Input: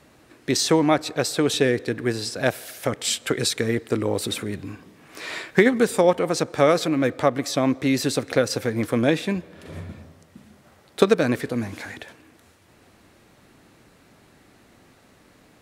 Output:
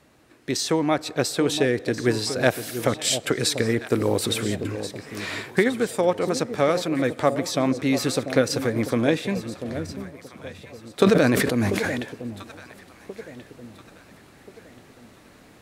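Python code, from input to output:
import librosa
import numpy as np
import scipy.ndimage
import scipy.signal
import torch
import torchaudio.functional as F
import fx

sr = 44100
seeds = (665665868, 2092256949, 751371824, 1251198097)

p1 = fx.rider(x, sr, range_db=4, speed_s=0.5)
p2 = p1 + fx.echo_alternate(p1, sr, ms=691, hz=830.0, feedback_pct=59, wet_db=-9.5, dry=0)
p3 = fx.sustainer(p2, sr, db_per_s=22.0, at=(11.0, 12.0))
y = p3 * librosa.db_to_amplitude(-1.0)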